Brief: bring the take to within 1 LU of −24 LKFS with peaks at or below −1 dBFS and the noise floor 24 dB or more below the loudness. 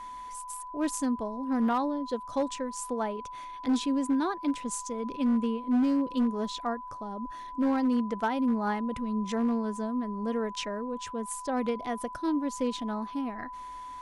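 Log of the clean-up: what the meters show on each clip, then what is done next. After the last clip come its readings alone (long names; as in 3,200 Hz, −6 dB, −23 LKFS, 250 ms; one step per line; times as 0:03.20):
share of clipped samples 0.8%; peaks flattened at −21.0 dBFS; interfering tone 1,000 Hz; level of the tone −39 dBFS; integrated loudness −30.5 LKFS; sample peak −21.0 dBFS; target loudness −24.0 LKFS
→ clipped peaks rebuilt −21 dBFS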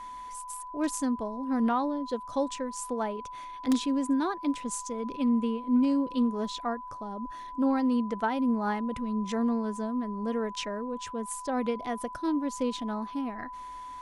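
share of clipped samples 0.0%; interfering tone 1,000 Hz; level of the tone −39 dBFS
→ notch filter 1,000 Hz, Q 30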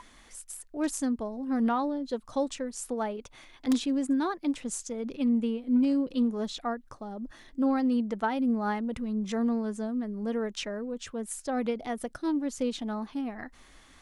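interfering tone none found; integrated loudness −30.5 LKFS; sample peak −12.0 dBFS; target loudness −24.0 LKFS
→ level +6.5 dB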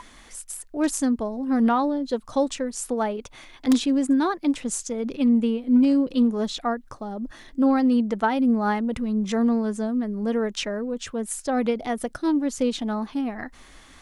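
integrated loudness −24.0 LKFS; sample peak −5.5 dBFS; background noise floor −50 dBFS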